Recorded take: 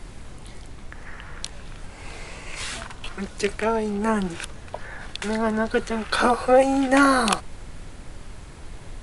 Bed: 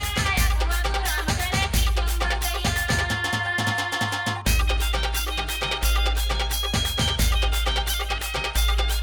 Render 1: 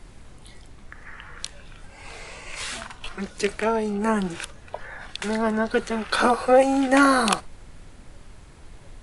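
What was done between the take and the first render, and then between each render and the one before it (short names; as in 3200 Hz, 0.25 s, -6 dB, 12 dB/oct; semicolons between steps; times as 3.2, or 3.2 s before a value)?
noise print and reduce 6 dB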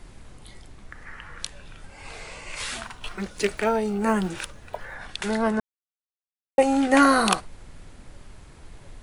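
2.83–4.96 block floating point 7-bit; 5.6–6.58 mute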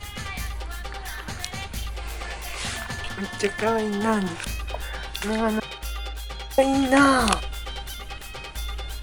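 add bed -10.5 dB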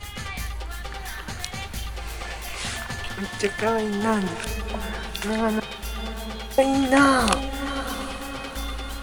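diffused feedback echo 0.738 s, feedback 51%, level -12.5 dB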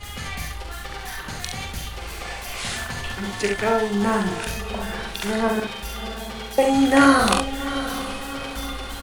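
early reflections 44 ms -5 dB, 69 ms -5 dB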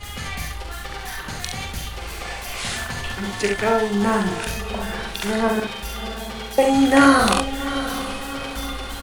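gain +1.5 dB; limiter -2 dBFS, peak gain reduction 2.5 dB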